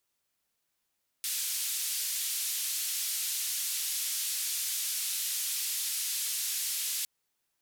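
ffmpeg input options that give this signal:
-f lavfi -i "anoisesrc=c=white:d=5.81:r=44100:seed=1,highpass=f=3200,lowpass=f=14000,volume=-24.9dB"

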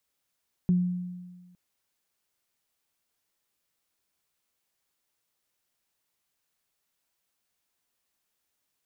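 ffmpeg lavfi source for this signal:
-f lavfi -i "aevalsrc='0.126*pow(10,-3*t/1.44)*sin(2*PI*179*t)+0.0141*pow(10,-3*t/0.27)*sin(2*PI*358*t)':d=0.86:s=44100"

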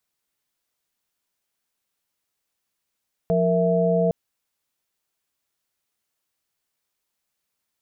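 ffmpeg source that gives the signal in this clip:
-f lavfi -i "aevalsrc='0.0841*(sin(2*PI*174.61*t)+sin(2*PI*466.16*t)+sin(2*PI*659.26*t))':d=0.81:s=44100"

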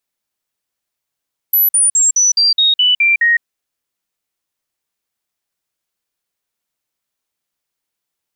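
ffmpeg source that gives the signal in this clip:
-f lavfi -i "aevalsrc='0.376*clip(min(mod(t,0.21),0.16-mod(t,0.21))/0.005,0,1)*sin(2*PI*11900*pow(2,-floor(t/0.21)/3)*mod(t,0.21))':d=1.89:s=44100"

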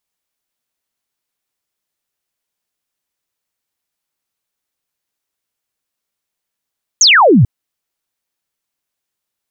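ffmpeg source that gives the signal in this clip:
-f lavfi -i "aevalsrc='0.596*clip(t/0.002,0,1)*clip((0.44-t)/0.002,0,1)*sin(2*PI*7100*0.44/log(97/7100)*(exp(log(97/7100)*t/0.44)-1))':d=0.44:s=44100"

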